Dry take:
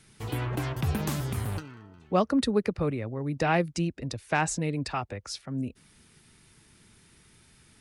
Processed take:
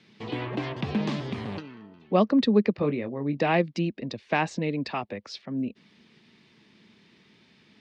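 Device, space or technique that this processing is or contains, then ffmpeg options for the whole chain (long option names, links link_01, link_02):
kitchen radio: -filter_complex "[0:a]asettb=1/sr,asplit=3[link_01][link_02][link_03];[link_01]atrim=end=2.764[link_04];[link_02]atrim=start=2.76:end=3.4,asetpts=PTS-STARTPTS,afade=type=in:duration=0.004:curve=qsin,afade=type=out:start_time=0.636:duration=0.004:curve=qsin,asplit=2[link_05][link_06];[link_06]adelay=21,volume=-8.5dB[link_07];[link_05][link_07]amix=inputs=2:normalize=0,atrim=end_sample=28224[link_08];[link_03]atrim=start=3.396[link_09];[link_04][link_08]acrossfade=duration=0.004:curve1=hsin:curve2=qsin[link_10];[link_10][link_09]acrossfade=duration=0.004:curve1=qsin:curve2=hsin,highpass=210,equalizer=frequency=210:width_type=q:width=4:gain=7,equalizer=frequency=810:width_type=q:width=4:gain=-3,equalizer=frequency=1400:width_type=q:width=4:gain=-9,lowpass=frequency=4400:width=0.5412,lowpass=frequency=4400:width=1.3066,volume=3.5dB"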